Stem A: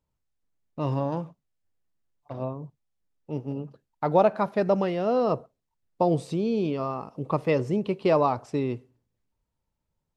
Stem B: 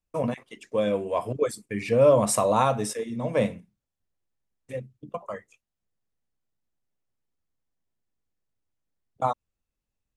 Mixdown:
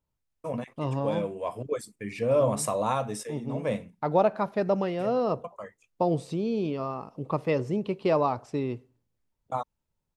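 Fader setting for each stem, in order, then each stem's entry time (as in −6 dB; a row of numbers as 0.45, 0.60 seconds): −2.5, −5.5 decibels; 0.00, 0.30 seconds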